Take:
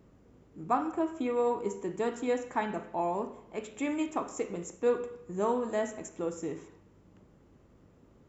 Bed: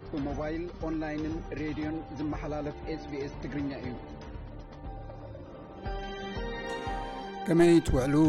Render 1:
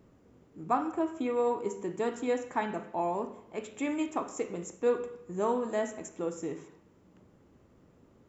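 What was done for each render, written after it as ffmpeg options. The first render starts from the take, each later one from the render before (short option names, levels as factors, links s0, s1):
-af "bandreject=f=50:t=h:w=4,bandreject=f=100:t=h:w=4,bandreject=f=150:t=h:w=4,bandreject=f=200:t=h:w=4"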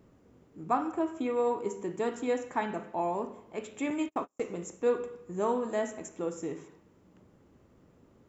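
-filter_complex "[0:a]asettb=1/sr,asplit=3[s0][s1][s2];[s0]atrim=end=3.904[s3];[s1]atrim=start=3.9:end=4.45,asetpts=PTS-STARTPTS,afade=t=in:d=0.004:c=qsin,afade=t=out:st=0.546:d=0.004:c=qsin,agate=range=0.0112:threshold=0.0126:ratio=16:release=100:detection=peak[s4];[s2]atrim=start=4.446[s5];[s3][s4]acrossfade=d=0.004:c1=hsin:c2=qsin[s6];[s6][s5]acrossfade=d=0.004:c1=qsin:c2=hsin"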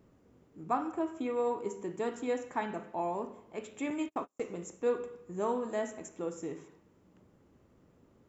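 -af "volume=0.708"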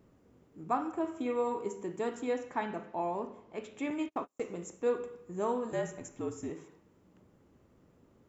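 -filter_complex "[0:a]asettb=1/sr,asplit=3[s0][s1][s2];[s0]atrim=end=1.004[s3];[s1]atrim=start=1:end=1.64,asetpts=PTS-STARTPTS,afade=t=in:d=0.004:c=qsin,afade=t=out:st=0.636:d=0.004:c=qsin,asplit=2[s4][s5];[s5]adelay=45,volume=0.447[s6];[s4][s6]amix=inputs=2:normalize=0,atrim=end_sample=28224[s7];[s2]atrim=start=1.636[s8];[s3][s7]acrossfade=d=0.004:c1=hsin:c2=qsin[s9];[s9][s8]acrossfade=d=0.004:c1=qsin:c2=hsin,asettb=1/sr,asplit=3[s10][s11][s12];[s10]atrim=end=2.294[s13];[s11]atrim=start=2.29:end=4.26,asetpts=PTS-STARTPTS,afade=t=in:d=0.004:c=qsin,afade=t=out:st=1.966:d=0.004:c=qsin,lowpass=f=6600:w=0.5412,lowpass=f=6600:w=1.3066[s14];[s12]atrim=start=4.256[s15];[s13][s14]acrossfade=d=0.004:c1=hsin:c2=qsin[s16];[s16][s15]acrossfade=d=0.004:c1=qsin:c2=hsin,asettb=1/sr,asplit=3[s17][s18][s19];[s17]atrim=end=5.724[s20];[s18]atrim=start=5.72:end=6.5,asetpts=PTS-STARTPTS,afade=t=in:d=0.004:c=qsin,afade=t=out:st=0.776:d=0.004:c=qsin,afreqshift=-61[s21];[s19]atrim=start=6.496[s22];[s20][s21]acrossfade=d=0.004:c1=hsin:c2=qsin[s23];[s23][s22]acrossfade=d=0.004:c1=qsin:c2=hsin"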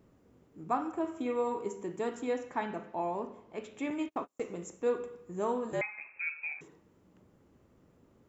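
-filter_complex "[0:a]asettb=1/sr,asplit=3[s0][s1][s2];[s0]atrim=end=5.814[s3];[s1]atrim=start=5.81:end=6.61,asetpts=PTS-STARTPTS,afade=t=in:d=0.004:c=qsin,afade=t=out:st=0.796:d=0.004:c=qsin,lowpass=f=2300:t=q:w=0.5098,lowpass=f=2300:t=q:w=0.6013,lowpass=f=2300:t=q:w=0.9,lowpass=f=2300:t=q:w=2.563,afreqshift=-2700[s4];[s2]atrim=start=6.606[s5];[s3][s4]acrossfade=d=0.004:c1=hsin:c2=qsin[s6];[s6][s5]acrossfade=d=0.004:c1=qsin:c2=hsin"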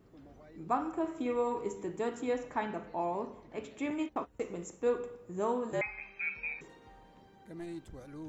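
-filter_complex "[1:a]volume=0.0794[s0];[0:a][s0]amix=inputs=2:normalize=0"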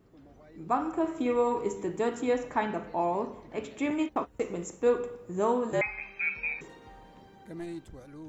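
-af "dynaudnorm=f=160:g=9:m=1.88"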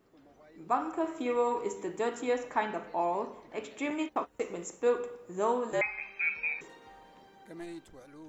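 -af "equalizer=f=66:w=0.34:g=-14"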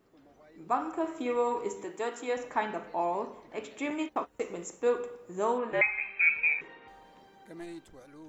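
-filter_complex "[0:a]asettb=1/sr,asplit=3[s0][s1][s2];[s0]atrim=end=1.844[s3];[s1]atrim=start=1.84:end=2.37,asetpts=PTS-STARTPTS,afade=t=in:d=0.004:c=qsin,afade=t=out:st=0.526:d=0.004:c=qsin,highpass=f=410:p=1[s4];[s2]atrim=start=2.366[s5];[s3][s4]acrossfade=d=0.004:c1=hsin:c2=qsin[s6];[s6][s5]acrossfade=d=0.004:c1=qsin:c2=hsin,asettb=1/sr,asplit=3[s7][s8][s9];[s7]atrim=end=5.584[s10];[s8]atrim=start=5.58:end=6.88,asetpts=PTS-STARTPTS,afade=t=in:d=0.004:c=qsin,afade=t=out:st=1.296:d=0.004:c=qsin,lowpass=f=2400:t=q:w=2.1[s11];[s9]atrim=start=6.876[s12];[s10][s11]acrossfade=d=0.004:c1=hsin:c2=qsin[s13];[s13][s12]acrossfade=d=0.004:c1=qsin:c2=hsin"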